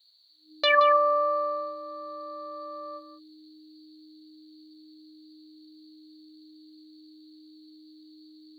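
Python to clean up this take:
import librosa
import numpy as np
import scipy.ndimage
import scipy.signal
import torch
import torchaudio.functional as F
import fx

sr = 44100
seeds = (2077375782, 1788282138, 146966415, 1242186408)

y = fx.notch(x, sr, hz=310.0, q=30.0)
y = fx.noise_reduce(y, sr, print_start_s=0.0, print_end_s=0.5, reduce_db=21.0)
y = fx.fix_echo_inverse(y, sr, delay_ms=174, level_db=-12.0)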